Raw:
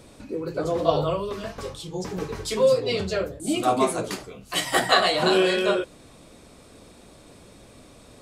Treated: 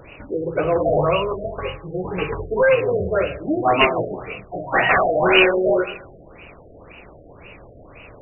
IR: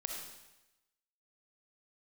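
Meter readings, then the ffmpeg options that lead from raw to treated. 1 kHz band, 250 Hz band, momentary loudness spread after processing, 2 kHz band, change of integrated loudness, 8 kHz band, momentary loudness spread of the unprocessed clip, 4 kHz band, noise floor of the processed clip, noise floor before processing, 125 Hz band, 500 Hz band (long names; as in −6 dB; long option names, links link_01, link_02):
+4.5 dB, +3.0 dB, 14 LU, +8.0 dB, +4.5 dB, below −40 dB, 14 LU, −0.5 dB, −45 dBFS, −50 dBFS, +4.5 dB, +4.5 dB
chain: -filter_complex "[0:a]equalizer=frequency=230:width_type=o:width=0.73:gain=-8.5,acontrast=72,asplit=2[link_01][link_02];[1:a]atrim=start_sample=2205[link_03];[link_02][link_03]afir=irnorm=-1:irlink=0,volume=-7dB[link_04];[link_01][link_04]amix=inputs=2:normalize=0,aeval=exprs='0.398*(abs(mod(val(0)/0.398+3,4)-2)-1)':channel_layout=same,aexciter=amount=3.4:drive=7.7:freq=2500,highshelf=frequency=2400:gain=10.5,afftfilt=real='re*lt(b*sr/1024,720*pow(3000/720,0.5+0.5*sin(2*PI*1.9*pts/sr)))':imag='im*lt(b*sr/1024,720*pow(3000/720,0.5+0.5*sin(2*PI*1.9*pts/sr)))':win_size=1024:overlap=0.75,volume=-2.5dB"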